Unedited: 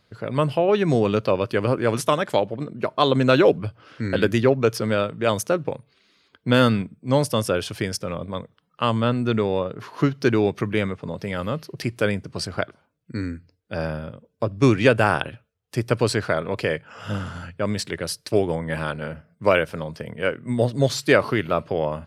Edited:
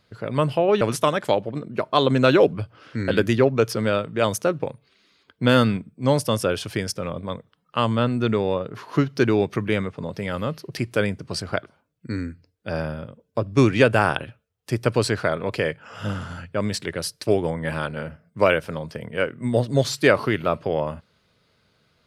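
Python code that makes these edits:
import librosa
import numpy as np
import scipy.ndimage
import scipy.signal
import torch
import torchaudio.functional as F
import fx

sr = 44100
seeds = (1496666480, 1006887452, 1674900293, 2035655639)

y = fx.edit(x, sr, fx.cut(start_s=0.81, length_s=1.05), tone=tone)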